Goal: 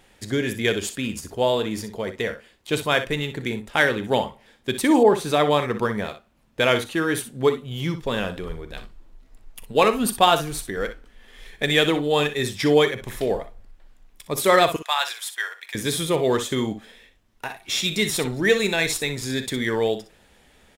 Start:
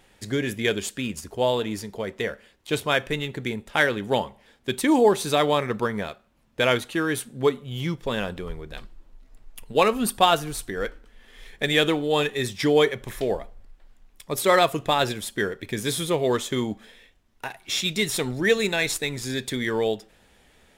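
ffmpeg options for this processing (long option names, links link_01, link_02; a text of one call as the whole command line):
ffmpeg -i in.wav -filter_complex "[0:a]asettb=1/sr,asplit=3[link_01][link_02][link_03];[link_01]atrim=end=14.764[link_04];[link_02]atrim=start=14.76:end=15.75,asetpts=PTS-STARTPTS,afade=type=in:duration=0.004:curve=qsin,afade=type=out:start_time=0.986:duration=0.004:curve=qsin,highpass=frequency=880:width=0.5412,highpass=frequency=880:width=1.3066[link_05];[link_03]atrim=start=15.746[link_06];[link_04][link_05]acrossfade=duration=0.004:curve1=hsin:curve2=qsin[link_07];[link_07][link_06]acrossfade=duration=0.004:curve1=qsin:curve2=hsin,aecho=1:1:42|61:0.133|0.282,asettb=1/sr,asplit=3[link_08][link_09][link_10];[link_08]atrim=end=5.034[link_11];[link_09]atrim=start=5.03:end=5.51,asetpts=PTS-STARTPTS,afade=type=in:duration=0.004:curve=qsin,afade=type=out:start_time=0.476:duration=0.004:curve=qsin,adynamicequalizer=threshold=0.0141:dfrequency=2800:dqfactor=0.7:tfrequency=2800:tqfactor=0.7:attack=5:release=100:ratio=0.375:range=3.5:mode=cutabove:tftype=highshelf[link_12];[link_10]atrim=start=5.506[link_13];[link_11][link_12]acrossfade=duration=0.004:curve1=hsin:curve2=qsin[link_14];[link_14][link_13]acrossfade=duration=0.004:curve1=qsin:curve2=hsin,volume=1.5dB" out.wav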